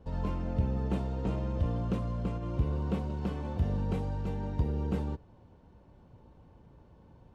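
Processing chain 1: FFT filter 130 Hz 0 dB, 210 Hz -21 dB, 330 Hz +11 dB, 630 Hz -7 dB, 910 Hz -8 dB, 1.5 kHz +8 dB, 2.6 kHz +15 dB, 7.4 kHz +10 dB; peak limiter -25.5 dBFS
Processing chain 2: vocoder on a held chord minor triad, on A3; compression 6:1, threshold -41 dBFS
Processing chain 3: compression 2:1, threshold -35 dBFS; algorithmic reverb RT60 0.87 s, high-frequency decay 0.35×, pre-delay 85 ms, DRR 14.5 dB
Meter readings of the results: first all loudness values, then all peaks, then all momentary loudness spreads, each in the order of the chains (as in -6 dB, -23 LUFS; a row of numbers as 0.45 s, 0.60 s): -35.5 LUFS, -45.0 LUFS, -37.5 LUFS; -25.5 dBFS, -31.5 dBFS, -22.0 dBFS; 2 LU, 18 LU, 13 LU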